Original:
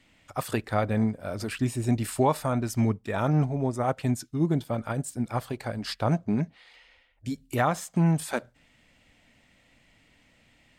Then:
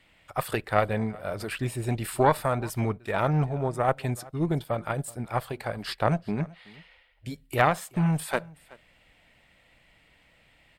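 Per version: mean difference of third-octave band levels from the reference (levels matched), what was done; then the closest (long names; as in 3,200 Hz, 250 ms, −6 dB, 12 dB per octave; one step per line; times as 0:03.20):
3.0 dB: graphic EQ with 15 bands 100 Hz −5 dB, 250 Hz −10 dB, 6,300 Hz −10 dB
harmonic generator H 2 −9 dB, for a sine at −12 dBFS
single-tap delay 377 ms −23 dB
level +2.5 dB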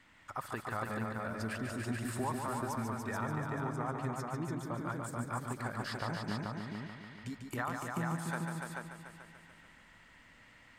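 11.0 dB: flat-topped bell 1,300 Hz +9.5 dB 1.3 octaves
downward compressor 2.5 to 1, threshold −38 dBFS, peak gain reduction 16 dB
on a send: echo machine with several playback heads 145 ms, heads all three, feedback 42%, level −6 dB
on the sum: level −4 dB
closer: first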